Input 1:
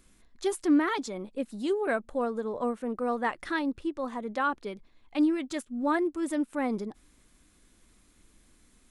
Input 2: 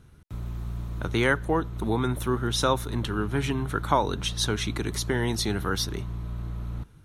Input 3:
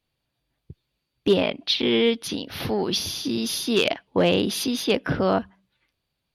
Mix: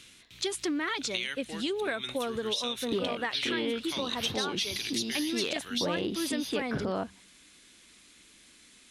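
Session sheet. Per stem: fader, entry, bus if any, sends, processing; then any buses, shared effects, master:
+2.5 dB, 0.00 s, bus A, no send, none
-6.0 dB, 0.00 s, bus A, no send, resonant high shelf 1.8 kHz +13 dB, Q 1.5; auto duck -11 dB, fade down 0.25 s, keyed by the first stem
-5.5 dB, 1.65 s, no bus, no send, none
bus A: 0.0 dB, frequency weighting D; compression, threshold -24 dBFS, peak gain reduction 10 dB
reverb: none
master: compression 3:1, threshold -29 dBFS, peak gain reduction 8 dB

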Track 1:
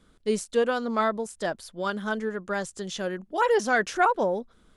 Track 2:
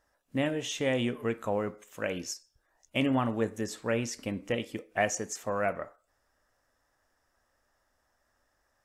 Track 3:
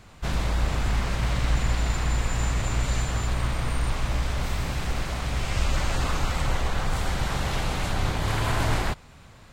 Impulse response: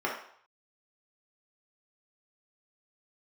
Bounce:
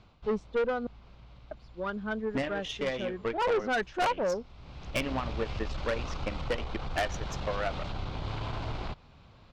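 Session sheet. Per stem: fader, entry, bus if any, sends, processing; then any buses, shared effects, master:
+1.0 dB, 0.00 s, muted 0.87–1.51 s, no send, spectral contrast expander 1.5:1
-1.0 dB, 2.00 s, no send, bass shelf 290 Hz -11 dB; transient shaper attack +12 dB, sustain -6 dB
-4.5 dB, 0.00 s, no send, peaking EQ 1.8 kHz -10 dB 0.45 oct; compression 2.5:1, threshold -26 dBFS, peak gain reduction 6.5 dB; auto duck -18 dB, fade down 0.40 s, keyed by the first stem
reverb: none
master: low-pass 4.7 kHz 24 dB/octave; valve stage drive 24 dB, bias 0.35

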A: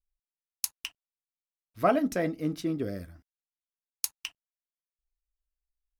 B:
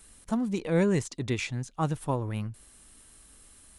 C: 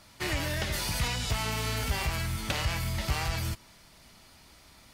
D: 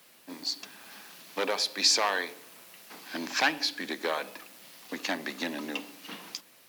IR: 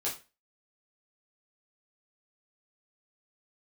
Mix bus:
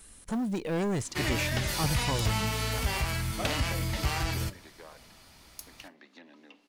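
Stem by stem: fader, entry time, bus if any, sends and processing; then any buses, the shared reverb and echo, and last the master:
-15.0 dB, 1.55 s, send -13 dB, none
+2.0 dB, 0.00 s, no send, saturation -28 dBFS, distortion -8 dB; short-mantissa float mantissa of 4-bit
-0.5 dB, 0.95 s, send -17.5 dB, none
-19.0 dB, 0.75 s, no send, low-pass that closes with the level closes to 1.8 kHz, closed at -26 dBFS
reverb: on, RT60 0.30 s, pre-delay 5 ms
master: none

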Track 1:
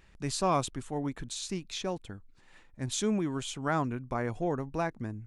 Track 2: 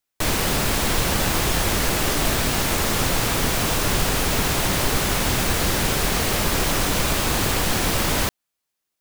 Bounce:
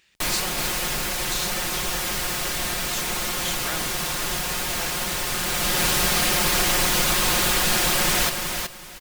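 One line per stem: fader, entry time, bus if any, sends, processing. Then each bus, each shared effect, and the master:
-7.5 dB, 0.00 s, no send, no echo send, frequency weighting D; square tremolo 0.87 Hz, depth 60%, duty 40%; treble shelf 4.4 kHz +10.5 dB
-3.5 dB, 0.00 s, no send, echo send -6 dB, tilt shelf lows -4 dB, about 740 Hz; comb 5.6 ms, depth 73%; auto duck -12 dB, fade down 1.15 s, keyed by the first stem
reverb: none
echo: feedback delay 373 ms, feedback 22%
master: none

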